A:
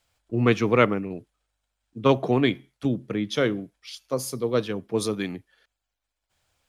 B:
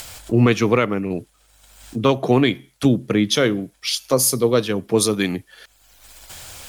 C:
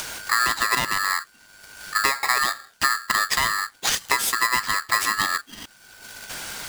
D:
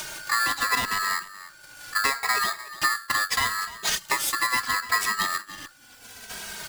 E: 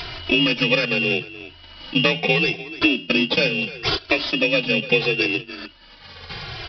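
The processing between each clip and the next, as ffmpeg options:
ffmpeg -i in.wav -filter_complex "[0:a]asplit=2[link_01][link_02];[link_02]acompressor=mode=upward:threshold=-25dB:ratio=2.5,volume=2dB[link_03];[link_01][link_03]amix=inputs=2:normalize=0,aemphasis=mode=production:type=cd,alimiter=limit=-8dB:level=0:latency=1:release=326,volume=2.5dB" out.wav
ffmpeg -i in.wav -af "highshelf=frequency=11000:gain=-11,acompressor=threshold=-25dB:ratio=6,aeval=exprs='val(0)*sgn(sin(2*PI*1500*n/s))':channel_layout=same,volume=6dB" out.wav
ffmpeg -i in.wav -filter_complex "[0:a]aecho=1:1:298:0.158,asplit=2[link_01][link_02];[link_02]adelay=2.8,afreqshift=-0.75[link_03];[link_01][link_03]amix=inputs=2:normalize=1" out.wav
ffmpeg -i in.wav -af "afftfilt=real='real(if(lt(b,272),68*(eq(floor(b/68),0)*1+eq(floor(b/68),1)*0+eq(floor(b/68),2)*3+eq(floor(b/68),3)*2)+mod(b,68),b),0)':imag='imag(if(lt(b,272),68*(eq(floor(b/68),0)*1+eq(floor(b/68),1)*0+eq(floor(b/68),2)*3+eq(floor(b/68),3)*2)+mod(b,68),b),0)':win_size=2048:overlap=0.75,adynamicequalizer=threshold=0.00562:dfrequency=1200:dqfactor=1.7:tfrequency=1200:tqfactor=1.7:attack=5:release=100:ratio=0.375:range=3:mode=cutabove:tftype=bell,aresample=11025,aresample=44100,volume=6.5dB" out.wav

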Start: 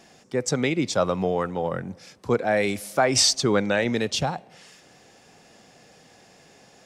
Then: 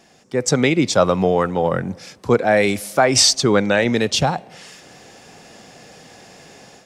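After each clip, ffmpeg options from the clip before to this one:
ffmpeg -i in.wav -af "dynaudnorm=framelen=250:gausssize=3:maxgain=9.5dB" out.wav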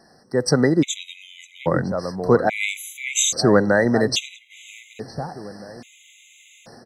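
ffmpeg -i in.wav -filter_complex "[0:a]asplit=2[link_01][link_02];[link_02]adelay=959,lowpass=frequency=1100:poles=1,volume=-10dB,asplit=2[link_03][link_04];[link_04]adelay=959,lowpass=frequency=1100:poles=1,volume=0.31,asplit=2[link_05][link_06];[link_06]adelay=959,lowpass=frequency=1100:poles=1,volume=0.31[link_07];[link_01][link_03][link_05][link_07]amix=inputs=4:normalize=0,afftfilt=real='re*gt(sin(2*PI*0.6*pts/sr)*(1-2*mod(floor(b*sr/1024/2000),2)),0)':imag='im*gt(sin(2*PI*0.6*pts/sr)*(1-2*mod(floor(b*sr/1024/2000),2)),0)':win_size=1024:overlap=0.75" out.wav

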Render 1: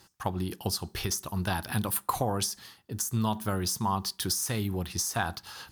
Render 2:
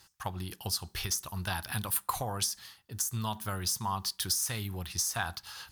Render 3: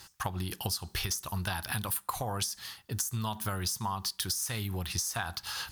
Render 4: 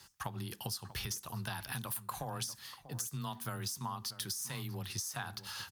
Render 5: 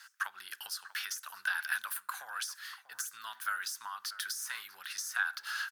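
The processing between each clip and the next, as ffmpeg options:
ffmpeg -i in.wav -af "equalizer=frequency=300:width_type=o:width=2.6:gain=-11" out.wav
ffmpeg -i in.wav -af "acompressor=threshold=-39dB:ratio=6,volume=8.5dB" out.wav
ffmpeg -i in.wav -filter_complex "[0:a]afreqshift=17,asplit=2[link_01][link_02];[link_02]adelay=641.4,volume=-14dB,highshelf=frequency=4000:gain=-14.4[link_03];[link_01][link_03]amix=inputs=2:normalize=0,volume=-6.5dB" out.wav
ffmpeg -i in.wav -af "highpass=frequency=1500:width_type=q:width=6.1" out.wav

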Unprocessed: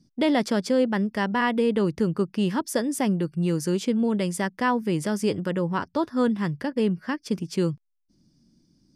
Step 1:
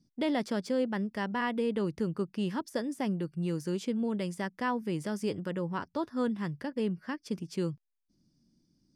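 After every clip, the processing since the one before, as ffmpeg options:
ffmpeg -i in.wav -af "deesser=0.7,volume=-8dB" out.wav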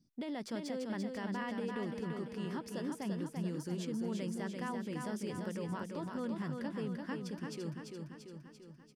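ffmpeg -i in.wav -filter_complex "[0:a]alimiter=level_in=5.5dB:limit=-24dB:level=0:latency=1:release=57,volume=-5.5dB,asplit=2[link_01][link_02];[link_02]aecho=0:1:341|682|1023|1364|1705|2046|2387|2728:0.596|0.351|0.207|0.122|0.0722|0.0426|0.0251|0.0148[link_03];[link_01][link_03]amix=inputs=2:normalize=0,volume=-3.5dB" out.wav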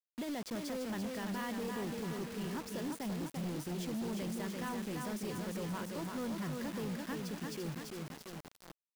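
ffmpeg -i in.wav -af "volume=35dB,asoftclip=hard,volume=-35dB,acrusher=bits=7:mix=0:aa=0.000001,volume=1dB" out.wav

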